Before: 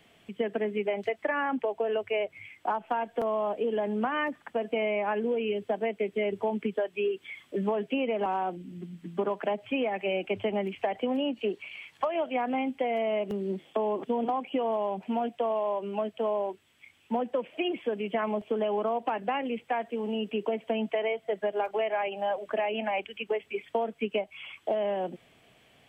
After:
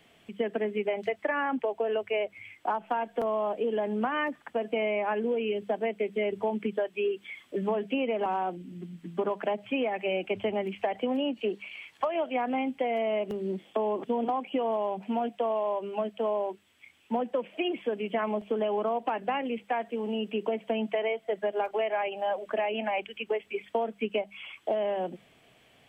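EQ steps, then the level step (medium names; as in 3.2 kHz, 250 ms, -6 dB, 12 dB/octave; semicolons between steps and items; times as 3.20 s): hum notches 50/100/150/200 Hz; 0.0 dB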